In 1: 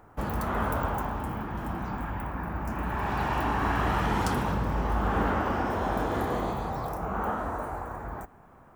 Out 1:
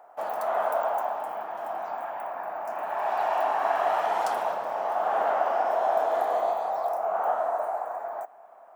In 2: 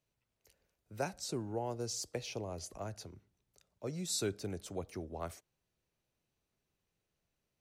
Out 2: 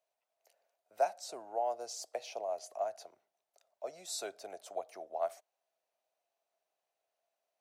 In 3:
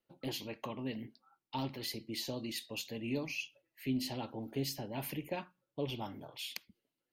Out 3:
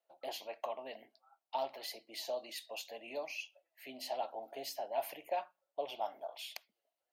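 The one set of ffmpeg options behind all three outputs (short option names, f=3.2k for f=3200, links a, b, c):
-af "highpass=f=670:t=q:w=6.9,volume=-4dB"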